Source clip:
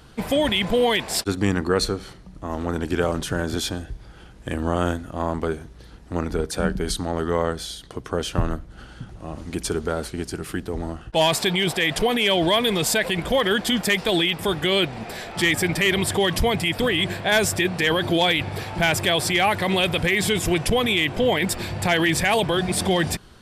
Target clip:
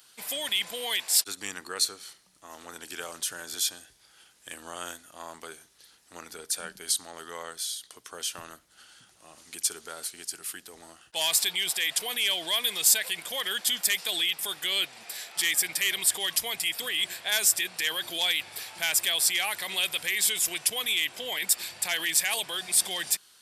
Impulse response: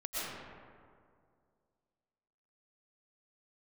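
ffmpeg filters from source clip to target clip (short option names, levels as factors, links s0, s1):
-af "aderivative,volume=1.5"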